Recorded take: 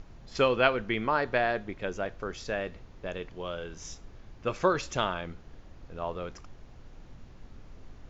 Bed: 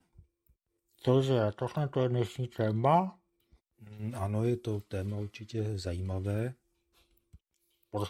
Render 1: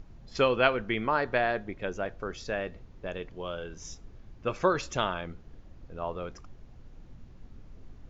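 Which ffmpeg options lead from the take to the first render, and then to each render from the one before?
-af "afftdn=nr=6:nf=-51"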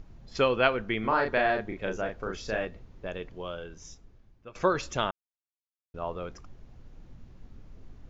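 -filter_complex "[0:a]asettb=1/sr,asplit=3[a][b][c];[a]atrim=end=1.004[d];[b]atrim=start=1:end=2.65,asetpts=PTS-STARTPTS,afade=t=in:d=0.004:c=qsin,afade=t=out:st=1.646:d=0.004:c=qsin,asplit=2[e][f];[f]adelay=37,volume=-3dB[g];[e][g]amix=inputs=2:normalize=0,atrim=end_sample=72765[h];[c]atrim=start=2.646[i];[d][h]acrossfade=d=0.004:c1=hsin:c2=qsin[j];[j][i]acrossfade=d=0.004:c1=qsin:c2=hsin,asplit=4[k][l][m][n];[k]atrim=end=4.55,asetpts=PTS-STARTPTS,afade=t=out:st=3.35:d=1.2:silence=0.112202[o];[l]atrim=start=4.55:end=5.11,asetpts=PTS-STARTPTS,afade=t=in:d=0.004:c=hsin:silence=0.112202,afade=t=out:st=0.556:d=0.004:c=hsin[p];[m]atrim=start=5.11:end=5.94,asetpts=PTS-STARTPTS,volume=0[q];[n]atrim=start=5.94,asetpts=PTS-STARTPTS,afade=t=in:d=0.004:c=hsin[r];[o][p][q][r]concat=n=4:v=0:a=1"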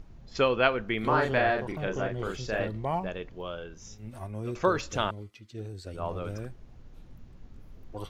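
-filter_complex "[1:a]volume=-5.5dB[a];[0:a][a]amix=inputs=2:normalize=0"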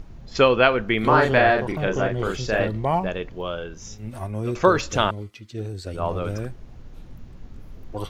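-af "volume=8dB,alimiter=limit=-2dB:level=0:latency=1"

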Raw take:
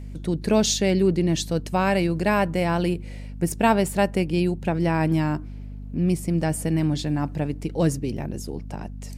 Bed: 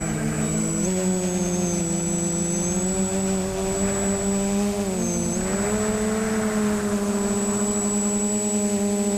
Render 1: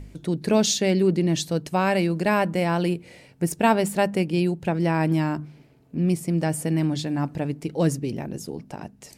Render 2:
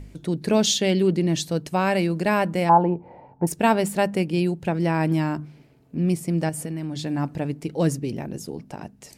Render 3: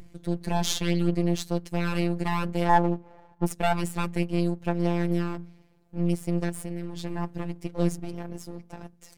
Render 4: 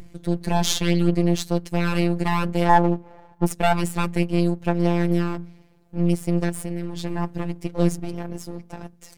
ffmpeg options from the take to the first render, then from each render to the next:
-af "bandreject=f=50:t=h:w=4,bandreject=f=100:t=h:w=4,bandreject=f=150:t=h:w=4,bandreject=f=200:t=h:w=4,bandreject=f=250:t=h:w=4"
-filter_complex "[0:a]asettb=1/sr,asplit=3[a][b][c];[a]atrim=end=0.664[d];[b]atrim=start=0.66:end=1.14,asetpts=PTS-STARTPTS,afade=t=in:d=0.004:c=qsin,afade=t=out:st=0.476:d=0.004:c=qsin,equalizer=f=3.2k:t=o:w=0.23:g=10.5[e];[c]atrim=start=1.136[f];[d][e]acrossfade=d=0.004:c1=hsin:c2=qsin[g];[g][f]acrossfade=d=0.004:c1=qsin:c2=hsin,asettb=1/sr,asplit=3[h][i][j];[h]atrim=end=2.694[k];[i]atrim=start=2.69:end=3.47,asetpts=PTS-STARTPTS,afade=t=in:d=0.004:c=qsin,afade=t=out:st=0.776:d=0.004:c=qsin,lowpass=f=880:t=q:w=8.5[l];[j]atrim=start=3.466[m];[k][l]acrossfade=d=0.004:c1=hsin:c2=qsin[n];[n][m]acrossfade=d=0.004:c1=qsin:c2=hsin,asettb=1/sr,asplit=3[o][p][q];[o]atrim=end=6.494[r];[p]atrim=start=6.49:end=7.03,asetpts=PTS-STARTPTS,afade=t=in:d=0.004:c=qsin,afade=t=out:st=0.536:d=0.004:c=qsin,acompressor=threshold=-26dB:ratio=6:attack=3.2:release=140:knee=1:detection=peak[s];[q]atrim=start=7.026[t];[r][s]acrossfade=d=0.004:c1=hsin:c2=qsin[u];[u][t]acrossfade=d=0.004:c1=qsin:c2=hsin"
-af "aeval=exprs='if(lt(val(0),0),0.251*val(0),val(0))':c=same,afftfilt=real='hypot(re,im)*cos(PI*b)':imag='0':win_size=1024:overlap=0.75"
-af "volume=5dB,alimiter=limit=-1dB:level=0:latency=1"

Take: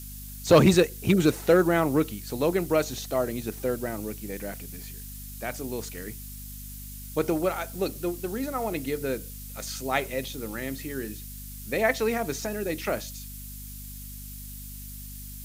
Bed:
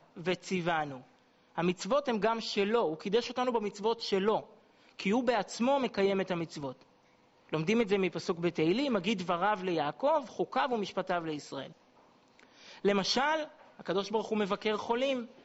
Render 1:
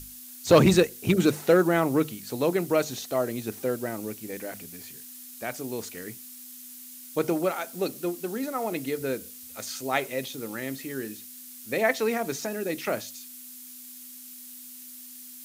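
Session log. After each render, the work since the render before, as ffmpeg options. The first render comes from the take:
-af "bandreject=f=50:t=h:w=6,bandreject=f=100:t=h:w=6,bandreject=f=150:t=h:w=6,bandreject=f=200:t=h:w=6"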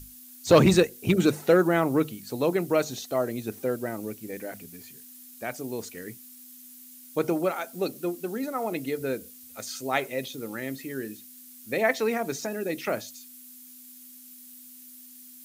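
-af "afftdn=nr=6:nf=-45"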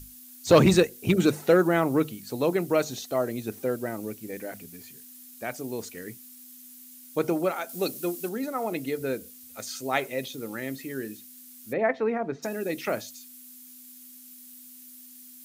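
-filter_complex "[0:a]asettb=1/sr,asplit=3[a][b][c];[a]atrim=end=7.694[d];[b]atrim=start=7.69:end=8.29,asetpts=PTS-STARTPTS,afade=t=in:d=0.004:c=qsin,afade=t=out:st=0.596:d=0.004:c=qsin,highshelf=f=2.9k:g=7.5[e];[c]atrim=start=8.286[f];[d][e]acrossfade=d=0.004:c1=hsin:c2=qsin[g];[g][f]acrossfade=d=0.004:c1=qsin:c2=hsin,asplit=3[h][i][j];[h]afade=t=out:st=11.72:d=0.02[k];[i]lowpass=1.6k,afade=t=in:st=11.72:d=0.02,afade=t=out:st=12.42:d=0.02[l];[j]afade=t=in:st=12.42:d=0.02[m];[k][l][m]amix=inputs=3:normalize=0"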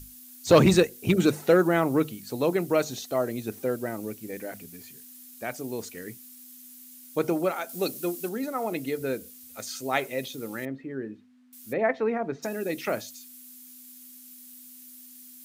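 -filter_complex "[0:a]asettb=1/sr,asplit=3[a][b][c];[a]atrim=end=10.654[d];[b]atrim=start=10.65:end=11.53,asetpts=PTS-STARTPTS,afade=t=in:d=0.004:c=qsin,afade=t=out:st=0.876:d=0.004:c=qsin,lowpass=1.4k[e];[c]atrim=start=11.526[f];[d][e]acrossfade=d=0.004:c1=hsin:c2=qsin[g];[g][f]acrossfade=d=0.004:c1=qsin:c2=hsin"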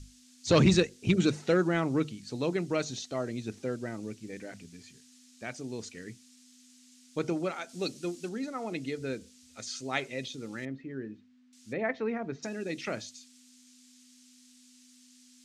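-af "lowpass=f=7k:w=0.5412,lowpass=f=7k:w=1.3066,equalizer=f=720:t=o:w=2.5:g=-8.5"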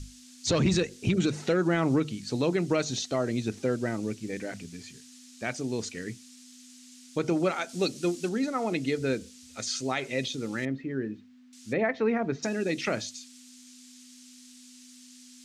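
-af "acontrast=79,alimiter=limit=-16.5dB:level=0:latency=1:release=134"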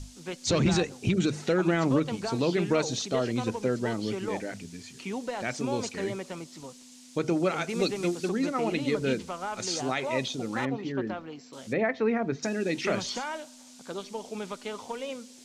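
-filter_complex "[1:a]volume=-5.5dB[a];[0:a][a]amix=inputs=2:normalize=0"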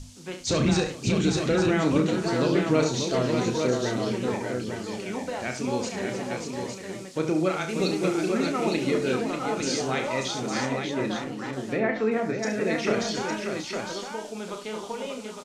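-filter_complex "[0:a]asplit=2[a][b];[b]adelay=32,volume=-7.5dB[c];[a][c]amix=inputs=2:normalize=0,aecho=1:1:70|406|587|858:0.335|0.106|0.501|0.531"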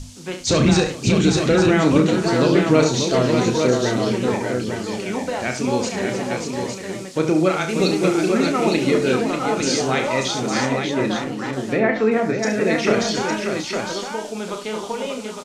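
-af "volume=7dB"

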